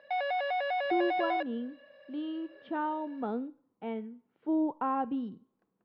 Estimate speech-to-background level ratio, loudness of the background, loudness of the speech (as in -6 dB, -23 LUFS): -3.0 dB, -32.0 LUFS, -35.0 LUFS